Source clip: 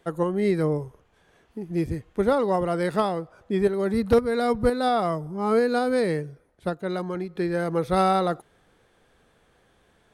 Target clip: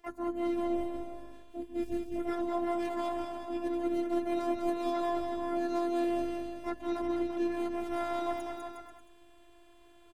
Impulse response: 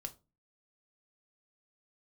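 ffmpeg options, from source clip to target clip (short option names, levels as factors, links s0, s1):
-filter_complex "[0:a]areverse,acompressor=threshold=0.0282:ratio=8,areverse,asplit=4[s0][s1][s2][s3];[s1]asetrate=29433,aresample=44100,atempo=1.49831,volume=0.631[s4];[s2]asetrate=58866,aresample=44100,atempo=0.749154,volume=0.158[s5];[s3]asetrate=66075,aresample=44100,atempo=0.66742,volume=0.501[s6];[s0][s4][s5][s6]amix=inputs=4:normalize=0,afftfilt=real='hypot(re,im)*cos(PI*b)':imag='0':win_size=512:overlap=0.75,aecho=1:1:200|360|488|590.4|672.3:0.631|0.398|0.251|0.158|0.1"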